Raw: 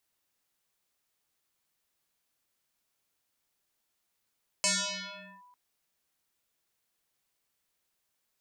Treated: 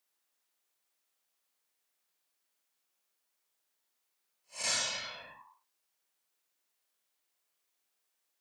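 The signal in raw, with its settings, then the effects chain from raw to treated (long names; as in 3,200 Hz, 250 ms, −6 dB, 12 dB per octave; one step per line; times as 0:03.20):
two-operator FM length 0.90 s, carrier 988 Hz, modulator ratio 0.81, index 10, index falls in 0.78 s linear, decay 1.52 s, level −22.5 dB
spectrum smeared in time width 142 ms
high-pass filter 320 Hz 12 dB per octave
random phases in short frames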